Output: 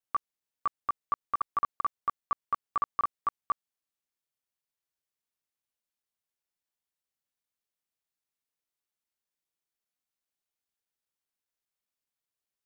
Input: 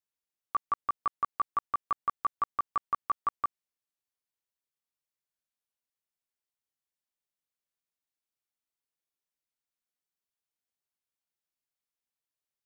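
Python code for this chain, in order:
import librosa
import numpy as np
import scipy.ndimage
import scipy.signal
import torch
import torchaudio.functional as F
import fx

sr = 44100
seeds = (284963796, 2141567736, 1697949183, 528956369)

y = fx.block_reorder(x, sr, ms=201.0, group=3)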